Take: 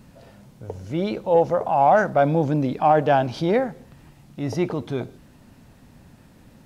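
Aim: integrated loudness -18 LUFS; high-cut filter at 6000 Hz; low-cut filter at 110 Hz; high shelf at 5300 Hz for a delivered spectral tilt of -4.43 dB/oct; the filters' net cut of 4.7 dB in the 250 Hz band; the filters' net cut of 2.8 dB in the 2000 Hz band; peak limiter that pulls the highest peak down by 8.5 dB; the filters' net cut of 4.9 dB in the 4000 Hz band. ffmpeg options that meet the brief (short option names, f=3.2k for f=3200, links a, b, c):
-af "highpass=110,lowpass=6k,equalizer=f=250:t=o:g=-6.5,equalizer=f=2k:t=o:g=-3.5,equalizer=f=4k:t=o:g=-7,highshelf=f=5.3k:g=6.5,volume=9dB,alimiter=limit=-7dB:level=0:latency=1"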